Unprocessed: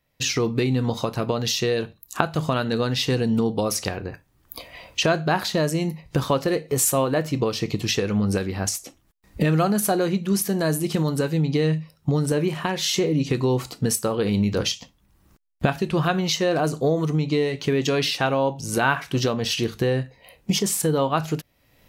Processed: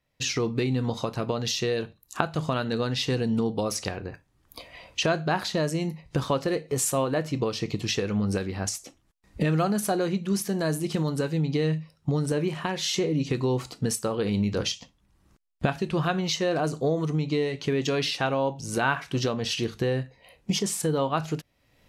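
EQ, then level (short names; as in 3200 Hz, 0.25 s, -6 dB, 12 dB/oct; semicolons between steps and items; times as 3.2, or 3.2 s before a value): LPF 10000 Hz 12 dB/oct; -4.0 dB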